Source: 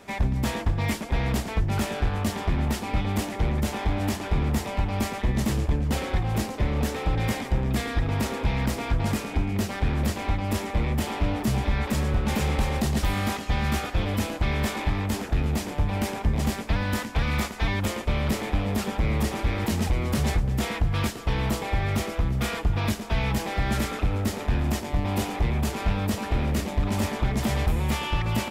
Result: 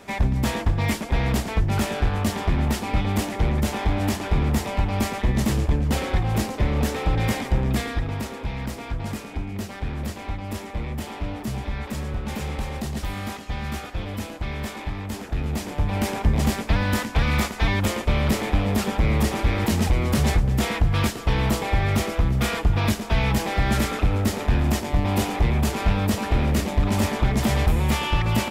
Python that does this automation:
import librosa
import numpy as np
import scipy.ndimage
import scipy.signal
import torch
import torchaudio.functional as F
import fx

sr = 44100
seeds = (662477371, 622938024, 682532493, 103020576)

y = fx.gain(x, sr, db=fx.line((7.7, 3.0), (8.3, -4.5), (15.04, -4.5), (16.18, 4.0)))